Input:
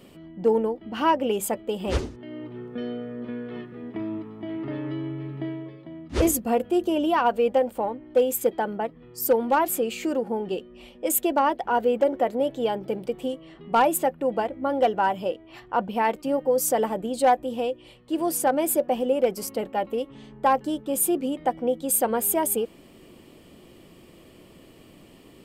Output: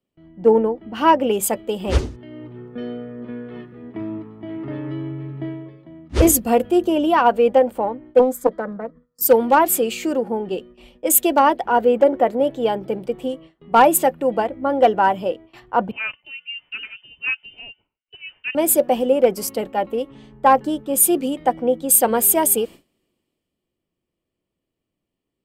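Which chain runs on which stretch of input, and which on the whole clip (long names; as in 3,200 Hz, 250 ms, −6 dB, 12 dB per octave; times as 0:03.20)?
0:08.19–0:09.21: low-pass filter 3,400 Hz 6 dB per octave + phaser with its sweep stopped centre 540 Hz, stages 8 + highs frequency-modulated by the lows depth 0.31 ms
0:15.91–0:18.55: high-pass filter 1,400 Hz + spectral tilt −4 dB per octave + voice inversion scrambler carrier 3,300 Hz
whole clip: noise gate with hold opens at −37 dBFS; multiband upward and downward expander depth 40%; level +5.5 dB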